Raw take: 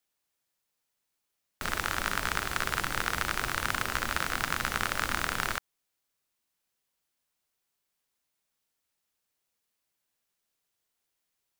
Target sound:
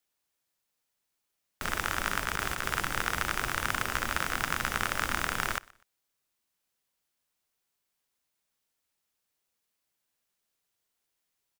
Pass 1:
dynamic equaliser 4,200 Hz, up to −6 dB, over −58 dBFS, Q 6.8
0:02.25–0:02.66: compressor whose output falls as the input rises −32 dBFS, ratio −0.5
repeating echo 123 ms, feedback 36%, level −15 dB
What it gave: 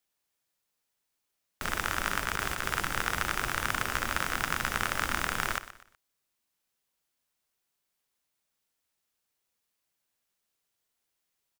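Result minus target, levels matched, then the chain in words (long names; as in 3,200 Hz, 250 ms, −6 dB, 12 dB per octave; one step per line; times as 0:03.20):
echo-to-direct +9.5 dB
dynamic equaliser 4,200 Hz, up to −6 dB, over −58 dBFS, Q 6.8
0:02.25–0:02.66: compressor whose output falls as the input rises −32 dBFS, ratio −0.5
repeating echo 123 ms, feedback 36%, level −24.5 dB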